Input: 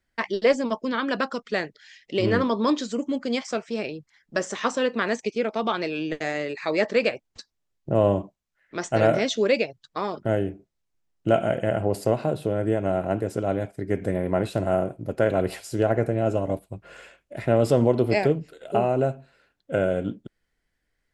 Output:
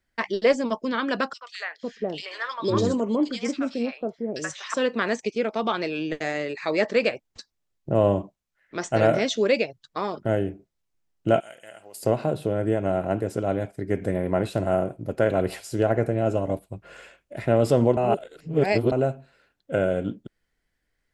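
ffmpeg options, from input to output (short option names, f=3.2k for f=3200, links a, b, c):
-filter_complex "[0:a]asettb=1/sr,asplit=3[a][b][c];[a]atrim=end=1.334[d];[b]atrim=start=1.33:end=4.74,asetpts=PTS-STARTPTS,afade=t=in:d=0.004:c=qsin,afade=t=out:st=3.406:d=0.004:c=qsin,acrossover=split=850|2600[e][f][g];[f]adelay=80[h];[e]adelay=500[i];[i][h][g]amix=inputs=3:normalize=0,atrim=end_sample=150381[j];[c]atrim=start=4.736[k];[d][j]acrossfade=d=0.004:c1=hsin:c2=qsin[l];[l][k]acrossfade=d=0.004:c1=qsin:c2=hsin,asettb=1/sr,asplit=3[m][n][o];[m]atrim=end=11.404[p];[n]atrim=start=11.4:end=12.03,asetpts=PTS-STARTPTS,afade=t=in:d=0.004:c=qsin,afade=t=out:st=0.626:d=0.004:c=qsin,aderivative[q];[o]atrim=start=12.026[r];[p][q]acrossfade=d=0.004:c1=hsin:c2=qsin[s];[s][r]acrossfade=d=0.004:c1=qsin:c2=hsin,asplit=3[t][u][v];[t]atrim=end=17.972[w];[u]atrim=start=17.968:end=18.922,asetpts=PTS-STARTPTS,areverse[x];[v]atrim=start=18.918[y];[w][x]acrossfade=d=0.004:c1=hsin:c2=hsin[z];[z][y]acrossfade=d=0.004:c1=hsin:c2=hsin"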